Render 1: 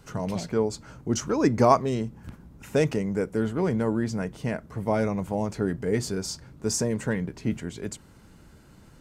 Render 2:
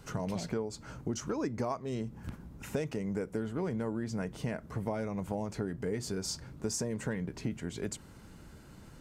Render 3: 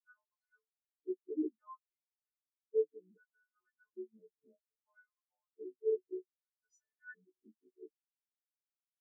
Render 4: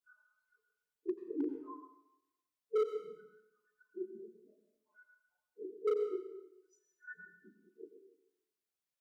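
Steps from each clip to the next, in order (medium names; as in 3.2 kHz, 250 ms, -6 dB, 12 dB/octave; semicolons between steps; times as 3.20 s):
compression 8:1, threshold -31 dBFS, peak gain reduction 18 dB
partials quantised in pitch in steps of 3 st; LFO band-pass square 0.63 Hz 370–1500 Hz; spectral contrast expander 4:1; trim +5 dB
phase randomisation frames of 50 ms; hard clipper -28.5 dBFS, distortion -12 dB; plate-style reverb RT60 0.9 s, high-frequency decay 0.95×, pre-delay 75 ms, DRR 6 dB; trim +1.5 dB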